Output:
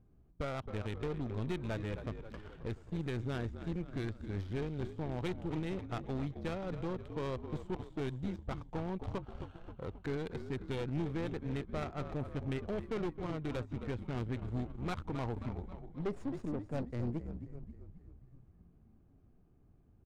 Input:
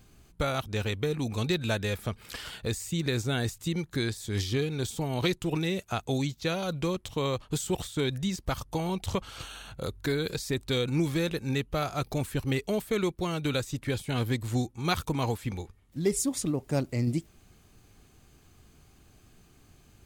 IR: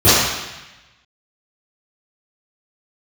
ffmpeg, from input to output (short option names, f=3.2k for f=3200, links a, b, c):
-filter_complex "[0:a]highshelf=f=9.4k:g=8.5,asplit=9[a][b][c][d][e][f][g][h][i];[b]adelay=266,afreqshift=-49,volume=-9.5dB[j];[c]adelay=532,afreqshift=-98,volume=-13.7dB[k];[d]adelay=798,afreqshift=-147,volume=-17.8dB[l];[e]adelay=1064,afreqshift=-196,volume=-22dB[m];[f]adelay=1330,afreqshift=-245,volume=-26.1dB[n];[g]adelay=1596,afreqshift=-294,volume=-30.3dB[o];[h]adelay=1862,afreqshift=-343,volume=-34.4dB[p];[i]adelay=2128,afreqshift=-392,volume=-38.6dB[q];[a][j][k][l][m][n][o][p][q]amix=inputs=9:normalize=0,aeval=exprs='(tanh(17.8*val(0)+0.5)-tanh(0.5))/17.8':c=same,adynamicsmooth=sensitivity=3:basefreq=750,volume=-5dB"